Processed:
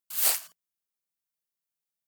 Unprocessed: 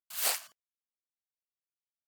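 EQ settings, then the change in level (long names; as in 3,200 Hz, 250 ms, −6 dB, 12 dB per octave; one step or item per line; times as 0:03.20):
parametric band 170 Hz +10 dB 0.34 octaves
high-shelf EQ 7,500 Hz +9.5 dB
0.0 dB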